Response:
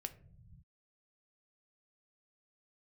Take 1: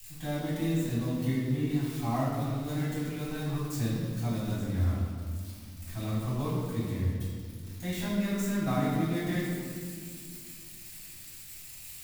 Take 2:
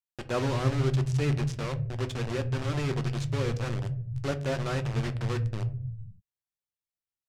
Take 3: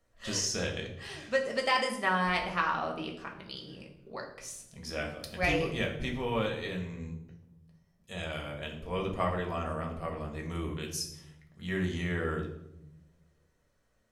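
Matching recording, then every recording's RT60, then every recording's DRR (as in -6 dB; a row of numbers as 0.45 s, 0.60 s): 2; 1.9 s, no single decay rate, 0.85 s; -10.5 dB, 8.0 dB, 0.0 dB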